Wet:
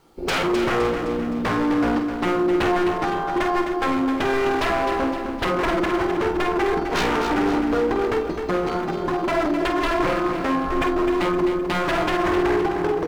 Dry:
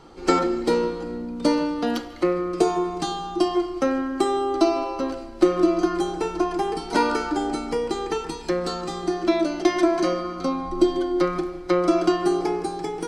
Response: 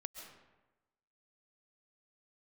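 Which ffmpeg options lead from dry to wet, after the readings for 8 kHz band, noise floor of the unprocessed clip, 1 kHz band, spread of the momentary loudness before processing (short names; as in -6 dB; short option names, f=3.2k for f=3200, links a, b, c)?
-2.0 dB, -37 dBFS, +3.5 dB, 7 LU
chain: -filter_complex "[0:a]lowpass=f=5.8k:w=0.5412,lowpass=f=5.8k:w=1.3066,afwtdn=0.0501,asplit=2[a][b];[b]acompressor=threshold=-27dB:ratio=6,volume=-3dB[c];[a][c]amix=inputs=2:normalize=0,aeval=exprs='0.668*(cos(1*acos(clip(val(0)/0.668,-1,1)))-cos(1*PI/2))+0.15*(cos(2*acos(clip(val(0)/0.668,-1,1)))-cos(2*PI/2))':c=same,acrusher=bits=10:mix=0:aa=0.000001,aeval=exprs='0.1*(abs(mod(val(0)/0.1+3,4)-2)-1)':c=same,asplit=2[d][e];[e]adelay=48,volume=-8dB[f];[d][f]amix=inputs=2:normalize=0,asplit=2[g][h];[h]aecho=0:1:258|516|774|1032|1290|1548:0.422|0.207|0.101|0.0496|0.0243|0.0119[i];[g][i]amix=inputs=2:normalize=0,volume=2.5dB"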